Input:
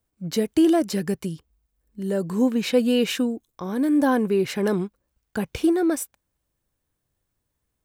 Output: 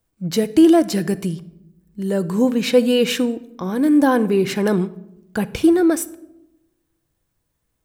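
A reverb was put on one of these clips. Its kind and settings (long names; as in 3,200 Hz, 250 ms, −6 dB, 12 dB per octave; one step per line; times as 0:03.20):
rectangular room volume 2,700 cubic metres, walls furnished, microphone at 0.68 metres
level +4.5 dB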